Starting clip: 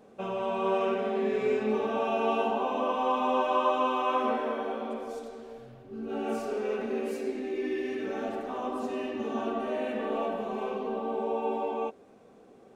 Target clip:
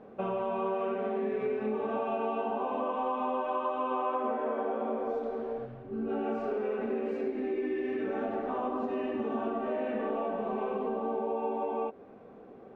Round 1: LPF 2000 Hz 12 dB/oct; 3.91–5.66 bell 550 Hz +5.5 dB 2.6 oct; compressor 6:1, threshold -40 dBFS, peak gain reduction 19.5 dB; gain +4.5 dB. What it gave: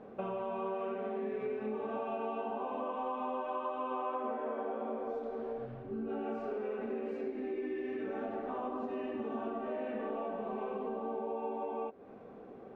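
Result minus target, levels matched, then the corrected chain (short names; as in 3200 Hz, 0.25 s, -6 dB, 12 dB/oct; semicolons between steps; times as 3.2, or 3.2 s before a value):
compressor: peak gain reduction +5.5 dB
LPF 2000 Hz 12 dB/oct; 3.91–5.66 bell 550 Hz +5.5 dB 2.6 oct; compressor 6:1, threshold -33.5 dBFS, peak gain reduction 14 dB; gain +4.5 dB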